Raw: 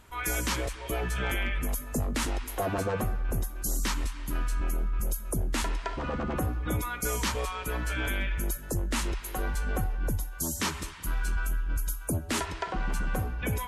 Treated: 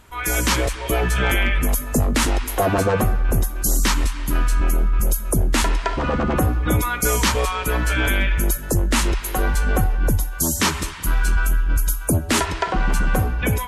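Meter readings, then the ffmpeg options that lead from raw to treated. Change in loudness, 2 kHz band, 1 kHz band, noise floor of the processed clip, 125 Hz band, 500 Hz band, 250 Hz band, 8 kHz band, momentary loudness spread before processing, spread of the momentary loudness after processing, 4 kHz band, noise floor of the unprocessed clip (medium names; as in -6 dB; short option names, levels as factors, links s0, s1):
+11.0 dB, +11.0 dB, +11.0 dB, -30 dBFS, +11.0 dB, +11.0 dB, +11.0 dB, +11.0 dB, 4 LU, 4 LU, +11.0 dB, -41 dBFS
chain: -af "dynaudnorm=f=130:g=5:m=1.88,volume=1.88"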